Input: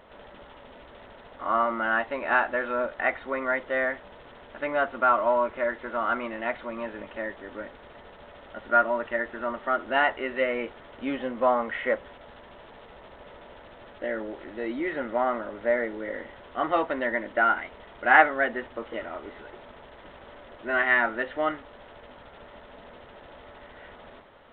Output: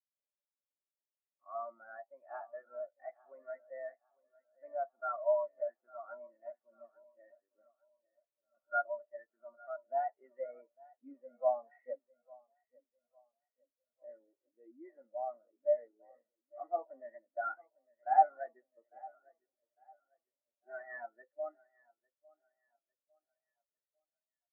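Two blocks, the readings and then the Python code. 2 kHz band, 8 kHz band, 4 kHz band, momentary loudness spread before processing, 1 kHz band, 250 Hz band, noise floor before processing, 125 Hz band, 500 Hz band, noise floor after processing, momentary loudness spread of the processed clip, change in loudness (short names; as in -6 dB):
-23.5 dB, n/a, under -40 dB, 16 LU, -10.5 dB, -29.5 dB, -49 dBFS, under -40 dB, -10.5 dB, under -85 dBFS, 22 LU, -11.5 dB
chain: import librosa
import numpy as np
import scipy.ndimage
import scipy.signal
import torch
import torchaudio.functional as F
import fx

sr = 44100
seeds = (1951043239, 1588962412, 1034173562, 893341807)

y = fx.cvsd(x, sr, bps=16000)
y = scipy.signal.sosfilt(scipy.signal.butter(2, 180.0, 'highpass', fs=sr, output='sos'), y)
y = fx.dynamic_eq(y, sr, hz=720.0, q=3.0, threshold_db=-41.0, ratio=4.0, max_db=6)
y = fx.echo_feedback(y, sr, ms=852, feedback_pct=60, wet_db=-10.0)
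y = fx.spectral_expand(y, sr, expansion=2.5)
y = F.gain(torch.from_numpy(y), -6.5).numpy()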